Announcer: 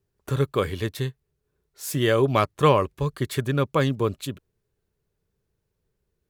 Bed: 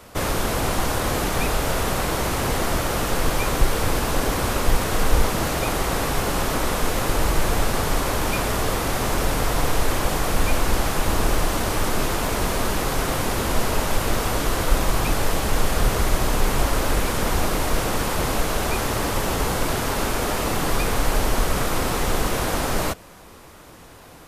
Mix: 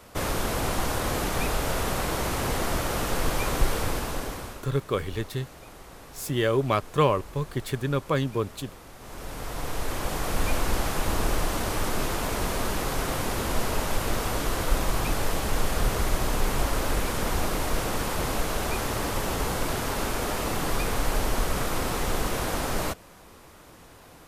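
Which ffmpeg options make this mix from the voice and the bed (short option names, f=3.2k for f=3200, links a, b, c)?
-filter_complex "[0:a]adelay=4350,volume=-3.5dB[a];[1:a]volume=13.5dB,afade=t=out:st=3.71:d=0.95:silence=0.11885,afade=t=in:st=8.98:d=1.5:silence=0.125893[b];[a][b]amix=inputs=2:normalize=0"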